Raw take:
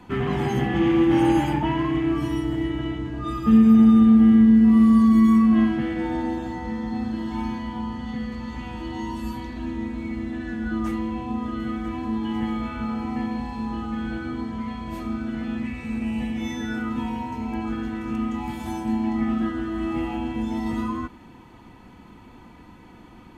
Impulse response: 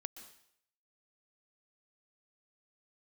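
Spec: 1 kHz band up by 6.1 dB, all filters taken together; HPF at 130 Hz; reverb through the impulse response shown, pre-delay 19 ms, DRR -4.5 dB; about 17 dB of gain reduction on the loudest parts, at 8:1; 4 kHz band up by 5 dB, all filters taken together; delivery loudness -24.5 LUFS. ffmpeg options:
-filter_complex "[0:a]highpass=130,equalizer=f=1000:t=o:g=7,equalizer=f=4000:t=o:g=6.5,acompressor=threshold=0.0316:ratio=8,asplit=2[s0][s1];[1:a]atrim=start_sample=2205,adelay=19[s2];[s1][s2]afir=irnorm=-1:irlink=0,volume=2.51[s3];[s0][s3]amix=inputs=2:normalize=0,volume=1.33"

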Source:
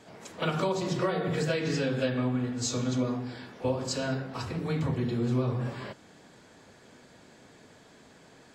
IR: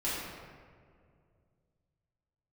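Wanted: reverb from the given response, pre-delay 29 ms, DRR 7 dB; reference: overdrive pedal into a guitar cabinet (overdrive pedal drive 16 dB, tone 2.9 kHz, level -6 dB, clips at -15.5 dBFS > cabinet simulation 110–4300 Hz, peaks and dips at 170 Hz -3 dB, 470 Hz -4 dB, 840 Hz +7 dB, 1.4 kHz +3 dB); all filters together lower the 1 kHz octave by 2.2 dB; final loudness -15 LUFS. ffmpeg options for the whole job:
-filter_complex "[0:a]equalizer=f=1000:t=o:g=-7.5,asplit=2[s0][s1];[1:a]atrim=start_sample=2205,adelay=29[s2];[s1][s2]afir=irnorm=-1:irlink=0,volume=0.2[s3];[s0][s3]amix=inputs=2:normalize=0,asplit=2[s4][s5];[s5]highpass=f=720:p=1,volume=6.31,asoftclip=type=tanh:threshold=0.168[s6];[s4][s6]amix=inputs=2:normalize=0,lowpass=f=2900:p=1,volume=0.501,highpass=110,equalizer=f=170:t=q:w=4:g=-3,equalizer=f=470:t=q:w=4:g=-4,equalizer=f=840:t=q:w=4:g=7,equalizer=f=1400:t=q:w=4:g=3,lowpass=f=4300:w=0.5412,lowpass=f=4300:w=1.3066,volume=5.01"

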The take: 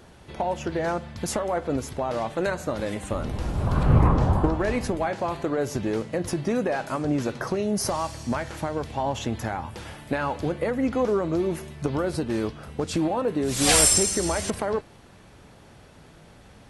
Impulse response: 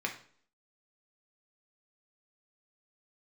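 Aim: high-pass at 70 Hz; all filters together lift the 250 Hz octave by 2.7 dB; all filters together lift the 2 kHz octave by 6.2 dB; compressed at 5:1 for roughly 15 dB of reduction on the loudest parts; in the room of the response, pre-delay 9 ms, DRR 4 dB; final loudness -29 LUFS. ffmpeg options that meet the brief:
-filter_complex "[0:a]highpass=70,equalizer=f=250:t=o:g=3.5,equalizer=f=2000:t=o:g=8,acompressor=threshold=0.0316:ratio=5,asplit=2[s0][s1];[1:a]atrim=start_sample=2205,adelay=9[s2];[s1][s2]afir=irnorm=-1:irlink=0,volume=0.355[s3];[s0][s3]amix=inputs=2:normalize=0,volume=1.5"

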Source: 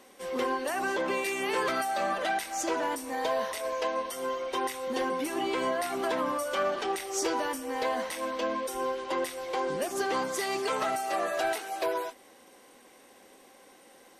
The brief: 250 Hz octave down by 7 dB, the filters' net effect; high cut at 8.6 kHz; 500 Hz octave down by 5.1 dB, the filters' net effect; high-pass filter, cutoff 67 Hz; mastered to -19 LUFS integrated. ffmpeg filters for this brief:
-af "highpass=67,lowpass=8600,equalizer=f=250:t=o:g=-7.5,equalizer=f=500:t=o:g=-4.5,volume=5.31"

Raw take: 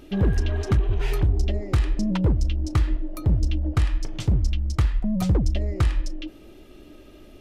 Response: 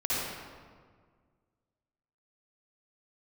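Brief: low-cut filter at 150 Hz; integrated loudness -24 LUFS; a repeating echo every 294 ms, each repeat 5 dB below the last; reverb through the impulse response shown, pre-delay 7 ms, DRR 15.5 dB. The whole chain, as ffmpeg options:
-filter_complex "[0:a]highpass=150,aecho=1:1:294|588|882|1176|1470|1764|2058:0.562|0.315|0.176|0.0988|0.0553|0.031|0.0173,asplit=2[s0][s1];[1:a]atrim=start_sample=2205,adelay=7[s2];[s1][s2]afir=irnorm=-1:irlink=0,volume=0.0562[s3];[s0][s3]amix=inputs=2:normalize=0,volume=1.78"

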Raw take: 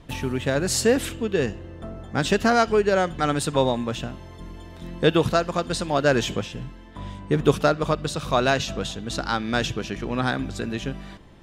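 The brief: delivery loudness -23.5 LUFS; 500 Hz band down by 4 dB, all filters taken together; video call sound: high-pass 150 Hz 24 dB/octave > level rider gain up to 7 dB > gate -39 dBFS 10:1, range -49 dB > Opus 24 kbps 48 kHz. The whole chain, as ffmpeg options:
-af "highpass=f=150:w=0.5412,highpass=f=150:w=1.3066,equalizer=f=500:t=o:g=-5,dynaudnorm=m=2.24,agate=range=0.00355:threshold=0.0112:ratio=10,volume=1.33" -ar 48000 -c:a libopus -b:a 24k

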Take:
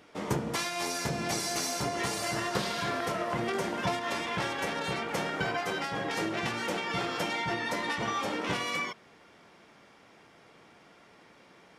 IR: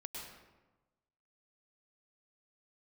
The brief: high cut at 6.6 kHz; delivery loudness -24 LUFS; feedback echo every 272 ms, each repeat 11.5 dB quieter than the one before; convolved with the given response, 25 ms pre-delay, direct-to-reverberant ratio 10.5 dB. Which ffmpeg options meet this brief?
-filter_complex "[0:a]lowpass=6600,aecho=1:1:272|544|816:0.266|0.0718|0.0194,asplit=2[s0][s1];[1:a]atrim=start_sample=2205,adelay=25[s2];[s1][s2]afir=irnorm=-1:irlink=0,volume=0.376[s3];[s0][s3]amix=inputs=2:normalize=0,volume=2.37"

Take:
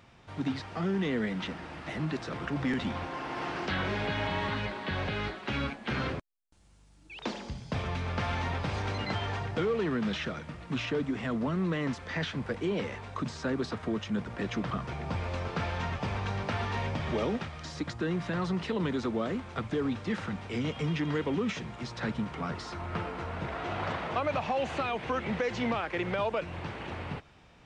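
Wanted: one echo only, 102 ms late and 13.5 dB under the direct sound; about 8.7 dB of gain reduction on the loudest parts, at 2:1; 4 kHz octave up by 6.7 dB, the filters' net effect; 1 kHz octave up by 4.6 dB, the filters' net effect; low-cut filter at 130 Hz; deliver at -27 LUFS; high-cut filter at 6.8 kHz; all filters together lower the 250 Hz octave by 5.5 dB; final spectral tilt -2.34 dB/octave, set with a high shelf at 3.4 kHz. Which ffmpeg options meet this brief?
-af "highpass=130,lowpass=6800,equalizer=f=250:t=o:g=-7,equalizer=f=1000:t=o:g=5.5,highshelf=f=3400:g=3.5,equalizer=f=4000:t=o:g=6.5,acompressor=threshold=0.01:ratio=2,aecho=1:1:102:0.211,volume=3.76"

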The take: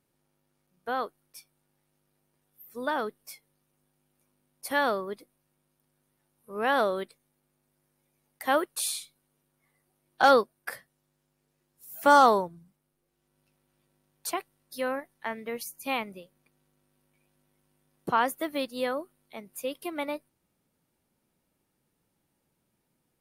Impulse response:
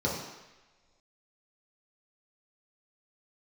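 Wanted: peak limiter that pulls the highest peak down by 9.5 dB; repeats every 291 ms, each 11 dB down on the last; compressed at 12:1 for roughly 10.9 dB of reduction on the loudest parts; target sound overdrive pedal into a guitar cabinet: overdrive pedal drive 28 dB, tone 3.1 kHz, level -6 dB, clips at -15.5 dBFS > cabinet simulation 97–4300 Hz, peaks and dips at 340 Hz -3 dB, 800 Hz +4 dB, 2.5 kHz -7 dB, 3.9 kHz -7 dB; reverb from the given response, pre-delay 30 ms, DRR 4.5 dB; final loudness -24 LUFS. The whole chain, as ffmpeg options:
-filter_complex "[0:a]acompressor=threshold=0.0631:ratio=12,alimiter=limit=0.0794:level=0:latency=1,aecho=1:1:291|582|873:0.282|0.0789|0.0221,asplit=2[s0][s1];[1:a]atrim=start_sample=2205,adelay=30[s2];[s1][s2]afir=irnorm=-1:irlink=0,volume=0.2[s3];[s0][s3]amix=inputs=2:normalize=0,asplit=2[s4][s5];[s5]highpass=f=720:p=1,volume=25.1,asoftclip=type=tanh:threshold=0.168[s6];[s4][s6]amix=inputs=2:normalize=0,lowpass=f=3100:p=1,volume=0.501,highpass=97,equalizer=f=340:t=q:w=4:g=-3,equalizer=f=800:t=q:w=4:g=4,equalizer=f=2500:t=q:w=4:g=-7,equalizer=f=3900:t=q:w=4:g=-7,lowpass=f=4300:w=0.5412,lowpass=f=4300:w=1.3066,volume=1.12"

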